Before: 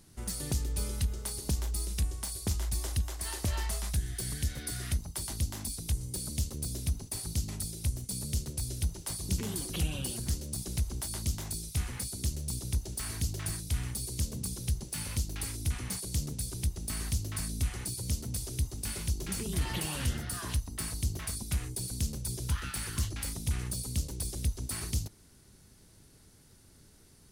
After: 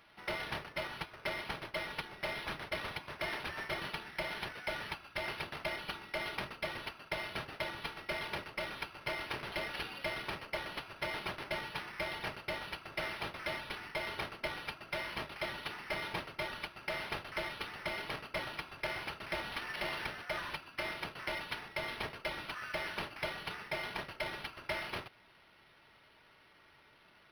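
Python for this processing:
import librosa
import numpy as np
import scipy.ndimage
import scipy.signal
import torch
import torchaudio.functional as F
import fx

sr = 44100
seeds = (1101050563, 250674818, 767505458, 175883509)

y = scipy.signal.sosfilt(scipy.signal.butter(2, 1300.0, 'highpass', fs=sr, output='sos'), x)
y = fx.peak_eq(y, sr, hz=3700.0, db=-12.5, octaves=0.86)
y = y + 0.77 * np.pad(y, (int(4.0 * sr / 1000.0), 0))[:len(y)]
y = np.interp(np.arange(len(y)), np.arange(len(y))[::6], y[::6])
y = F.gain(torch.from_numpy(y), 2.5).numpy()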